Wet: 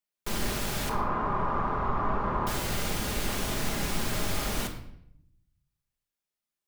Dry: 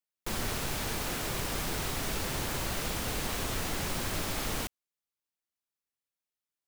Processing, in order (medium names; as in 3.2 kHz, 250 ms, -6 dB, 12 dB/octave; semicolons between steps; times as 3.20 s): 0.89–2.47 s: resonant low-pass 1.1 kHz, resonance Q 5.5; reverberation RT60 0.70 s, pre-delay 5 ms, DRR 2 dB